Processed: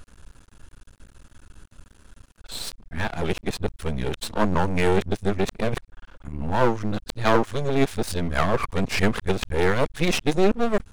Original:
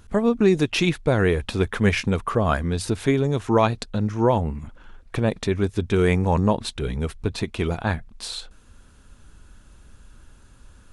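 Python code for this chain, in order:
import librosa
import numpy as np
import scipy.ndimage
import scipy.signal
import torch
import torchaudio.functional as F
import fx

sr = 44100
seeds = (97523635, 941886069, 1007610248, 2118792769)

y = x[::-1].copy()
y = np.maximum(y, 0.0)
y = y * librosa.db_to_amplitude(3.5)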